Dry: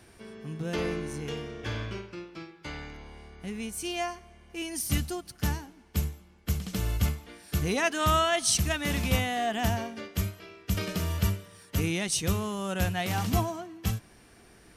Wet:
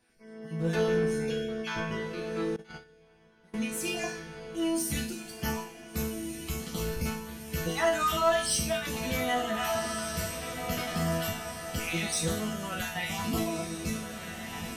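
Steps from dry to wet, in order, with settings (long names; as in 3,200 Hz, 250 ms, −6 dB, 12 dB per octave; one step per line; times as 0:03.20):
time-frequency cells dropped at random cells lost 28%
on a send: feedback delay with all-pass diffusion 1,498 ms, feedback 51%, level −9 dB
on the sum: automatic gain control gain up to 16 dB
resonators tuned to a chord E3 sus4, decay 0.48 s
0:02.56–0:03.54: noise gate −37 dBFS, range −22 dB
in parallel at −4.5 dB: hard clipping −33.5 dBFS, distortion −9 dB
on the sum: level +2.5 dB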